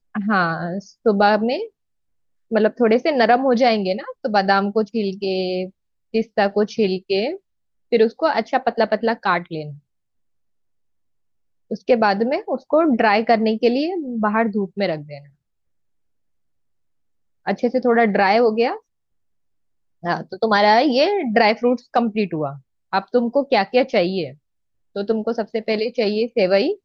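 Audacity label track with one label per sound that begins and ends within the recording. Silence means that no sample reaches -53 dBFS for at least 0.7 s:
2.510000	9.800000	sound
11.700000	15.330000	sound
17.460000	18.800000	sound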